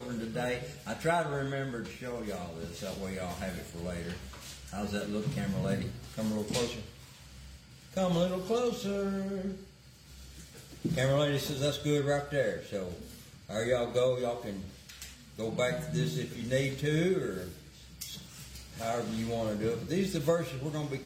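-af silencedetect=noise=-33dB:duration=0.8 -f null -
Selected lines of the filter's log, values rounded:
silence_start: 6.82
silence_end: 7.97 | silence_duration: 1.15
silence_start: 9.53
silence_end: 10.85 | silence_duration: 1.32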